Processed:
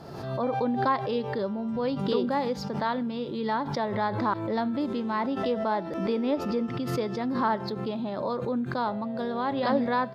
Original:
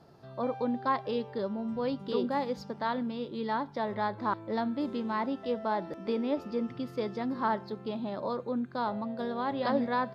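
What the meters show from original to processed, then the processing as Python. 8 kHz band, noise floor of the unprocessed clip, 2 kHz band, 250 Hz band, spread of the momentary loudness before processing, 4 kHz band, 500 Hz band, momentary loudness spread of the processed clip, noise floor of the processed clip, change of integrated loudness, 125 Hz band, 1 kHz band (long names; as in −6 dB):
can't be measured, −48 dBFS, +4.0 dB, +4.0 dB, 5 LU, +5.0 dB, +4.0 dB, 5 LU, −35 dBFS, +4.0 dB, +9.0 dB, +3.5 dB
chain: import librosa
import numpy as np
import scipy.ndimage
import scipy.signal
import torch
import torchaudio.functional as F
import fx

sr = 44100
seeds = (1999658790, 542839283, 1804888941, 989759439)

y = fx.pre_swell(x, sr, db_per_s=46.0)
y = y * librosa.db_to_amplitude(3.0)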